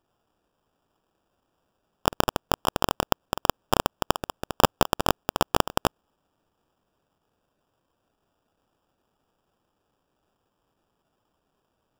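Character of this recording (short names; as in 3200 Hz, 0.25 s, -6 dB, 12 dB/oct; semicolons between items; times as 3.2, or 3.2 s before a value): aliases and images of a low sample rate 2100 Hz, jitter 0%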